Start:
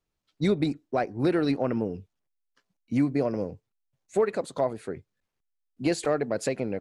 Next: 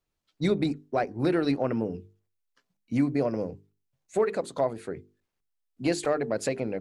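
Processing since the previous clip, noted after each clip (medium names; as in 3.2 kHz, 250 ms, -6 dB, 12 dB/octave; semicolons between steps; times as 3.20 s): hum notches 50/100/150/200/250/300/350/400/450 Hz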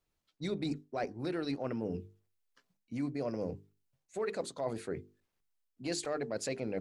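dynamic bell 5.5 kHz, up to +7 dB, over -52 dBFS, Q 0.8; reverse; compression 6:1, threshold -33 dBFS, peak gain reduction 13 dB; reverse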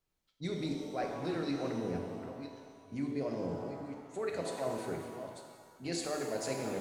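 chunks repeated in reverse 493 ms, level -9 dB; pitch-shifted reverb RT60 1.6 s, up +7 st, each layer -8 dB, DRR 2 dB; trim -2.5 dB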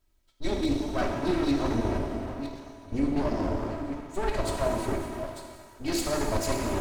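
comb filter that takes the minimum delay 3.1 ms; bass shelf 130 Hz +12 dB; trim +8.5 dB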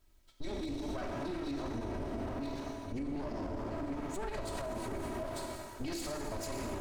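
compression, threshold -33 dBFS, peak gain reduction 12 dB; peak limiter -34 dBFS, peak gain reduction 10.5 dB; trim +3.5 dB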